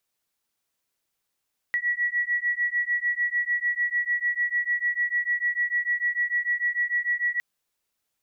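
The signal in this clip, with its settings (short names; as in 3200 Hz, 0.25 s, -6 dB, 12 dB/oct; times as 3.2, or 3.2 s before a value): beating tones 1930 Hz, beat 6.7 Hz, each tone -26 dBFS 5.66 s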